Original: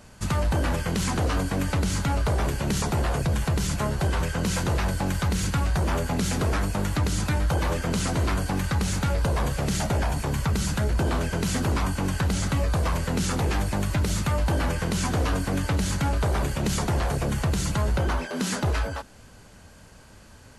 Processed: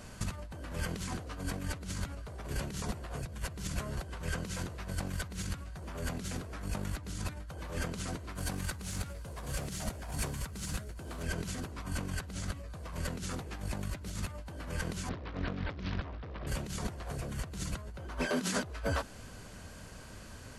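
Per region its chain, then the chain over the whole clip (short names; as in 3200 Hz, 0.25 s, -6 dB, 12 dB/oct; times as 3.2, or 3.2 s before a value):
8.35–11.23 CVSD 64 kbps + high shelf 7200 Hz +8 dB
15.09–16.47 steep low-pass 4200 Hz 96 dB/oct + Doppler distortion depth 0.93 ms
whole clip: notch 850 Hz, Q 13; negative-ratio compressor -30 dBFS, ratio -0.5; gain -6 dB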